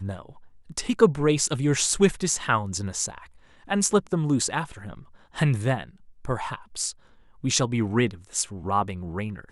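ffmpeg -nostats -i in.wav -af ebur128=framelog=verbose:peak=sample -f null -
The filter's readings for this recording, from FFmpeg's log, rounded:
Integrated loudness:
  I:         -25.2 LUFS
  Threshold: -35.9 LUFS
Loudness range:
  LRA:         4.3 LU
  Threshold: -46.1 LUFS
  LRA low:   -28.4 LUFS
  LRA high:  -24.0 LUFS
Sample peak:
  Peak:       -3.0 dBFS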